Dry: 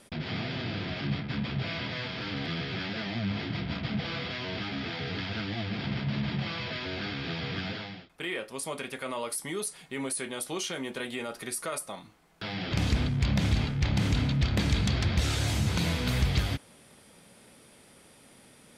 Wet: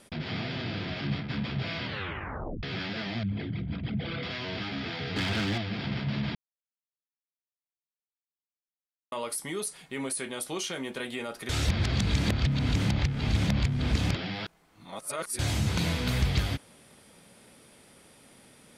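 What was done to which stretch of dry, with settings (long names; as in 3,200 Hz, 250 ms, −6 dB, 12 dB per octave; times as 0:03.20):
0:01.84: tape stop 0.79 s
0:03.23–0:04.23: spectral envelope exaggerated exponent 2
0:05.16–0:05.58: leveller curve on the samples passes 2
0:06.35–0:09.12: silence
0:11.49–0:15.39: reverse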